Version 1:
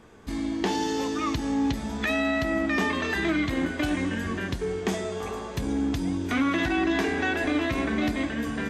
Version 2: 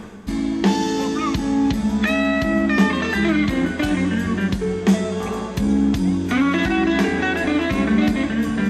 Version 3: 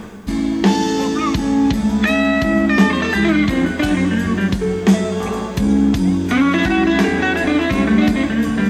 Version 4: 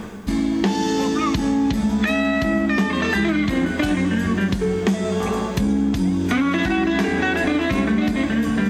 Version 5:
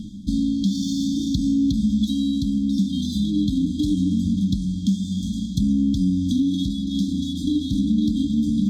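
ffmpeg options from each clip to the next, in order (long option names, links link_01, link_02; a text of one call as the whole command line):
ffmpeg -i in.wav -af "equalizer=frequency=200:width_type=o:width=0.27:gain=14,areverse,acompressor=mode=upward:threshold=-25dB:ratio=2.5,areverse,volume=5dB" out.wav
ffmpeg -i in.wav -af "acrusher=bits=9:mix=0:aa=0.000001,volume=3.5dB" out.wav
ffmpeg -i in.wav -af "acompressor=threshold=-16dB:ratio=6" out.wav
ffmpeg -i in.wav -af "adynamicsmooth=sensitivity=5:basefreq=6200,afftfilt=real='re*(1-between(b*sr/4096,320,3200))':imag='im*(1-between(b*sr/4096,320,3200))':win_size=4096:overlap=0.75" out.wav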